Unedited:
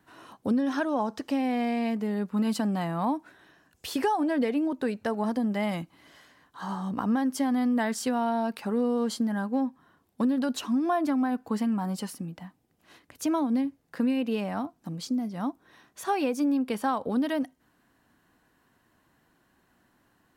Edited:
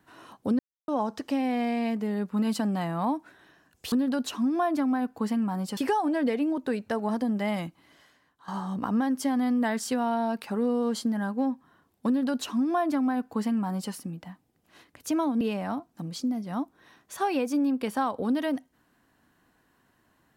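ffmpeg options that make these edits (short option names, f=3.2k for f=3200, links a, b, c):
-filter_complex "[0:a]asplit=7[a][b][c][d][e][f][g];[a]atrim=end=0.59,asetpts=PTS-STARTPTS,afade=t=out:st=0.586:d=0.004:c=hsin[h];[b]atrim=start=0.59:end=0.88,asetpts=PTS-STARTPTS,volume=0[i];[c]atrim=start=0.88:end=3.922,asetpts=PTS-STARTPTS,afade=t=in:d=0.004:c=hsin[j];[d]atrim=start=10.218:end=12.072[k];[e]atrim=start=3.918:end=6.63,asetpts=PTS-STARTPTS,afade=t=out:st=1.762:d=0.95:silence=0.251189[l];[f]atrim=start=6.63:end=13.562,asetpts=PTS-STARTPTS,afade=t=in:d=0.004:c=hsin:silence=0.251189[m];[g]atrim=start=14.278[n];[h][i][j]concat=n=3:v=0:a=1[o];[o][k]acrossfade=d=0.004:c1=hsin:c2=hsin[p];[l][m]concat=n=2:v=0:a=1[q];[p][q]acrossfade=d=0.004:c1=hsin:c2=hsin[r];[r][n]acrossfade=d=0.004:c1=hsin:c2=hsin"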